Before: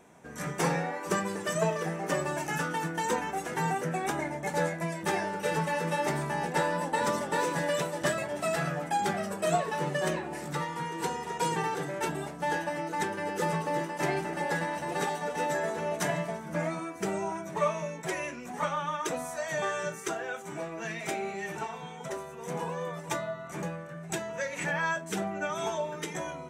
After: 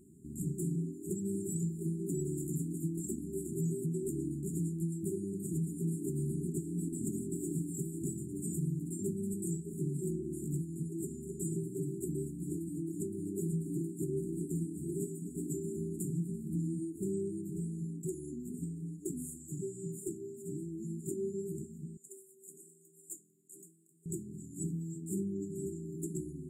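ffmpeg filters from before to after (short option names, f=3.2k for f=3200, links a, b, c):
-filter_complex "[0:a]asettb=1/sr,asplit=3[a][b][c];[a]atrim=end=21.974[d];[b]atrim=start=21.97:end=24.06,asetpts=PTS-STARTPTS,afade=t=in:d=0.004:c=qsin,afade=t=out:st=2.086:d=0.004:c=qsin,highpass=980[e];[c]atrim=start=24.056[f];[d][e]acrossfade=d=0.004:c1=hsin:c2=qsin[g];[g][f]acrossfade=d=0.004:c1=qsin:c2=hsin,afftfilt=real='re*(1-between(b*sr/4096,410,6800))':imag='im*(1-between(b*sr/4096,410,6800))':win_size=4096:overlap=0.75,lowshelf=f=180:g=5.5,alimiter=level_in=2dB:limit=-24dB:level=0:latency=1:release=209,volume=-2dB"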